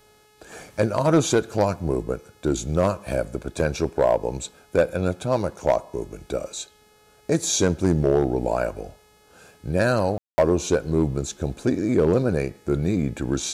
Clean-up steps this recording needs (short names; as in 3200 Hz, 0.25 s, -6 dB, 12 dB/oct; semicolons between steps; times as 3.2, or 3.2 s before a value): clip repair -10.5 dBFS; de-hum 423.9 Hz, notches 33; room tone fill 10.18–10.38